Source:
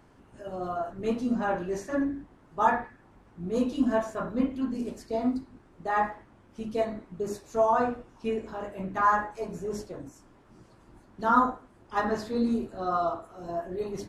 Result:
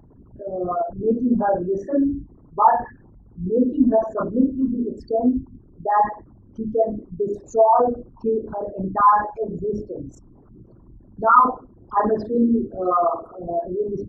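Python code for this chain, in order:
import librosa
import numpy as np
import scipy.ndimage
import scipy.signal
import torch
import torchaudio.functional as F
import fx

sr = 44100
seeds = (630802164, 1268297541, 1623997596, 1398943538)

y = fx.envelope_sharpen(x, sr, power=3.0)
y = y * librosa.db_to_amplitude(8.5)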